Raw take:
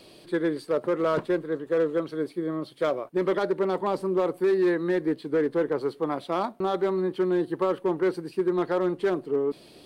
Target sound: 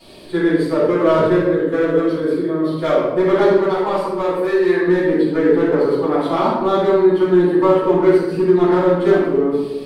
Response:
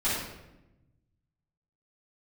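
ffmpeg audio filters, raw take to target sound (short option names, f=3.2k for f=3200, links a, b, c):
-filter_complex "[0:a]asettb=1/sr,asplit=3[a][b][c];[a]atrim=end=3.534[d];[b]atrim=start=3.53:end=4.87,asetpts=PTS-STARTPTS,afade=t=in:d=0.004:c=qsin,afade=t=out:st=1.336:d=0.004:c=qsin,equalizer=f=210:t=o:w=2:g=-9[e];[c]atrim=start=4.866[f];[d][e]acrossfade=d=0.004:c1=hsin:c2=qsin[g];[g][f]acrossfade=d=0.004:c1=qsin:c2=hsin[h];[1:a]atrim=start_sample=2205[i];[h][i]afir=irnorm=-1:irlink=0"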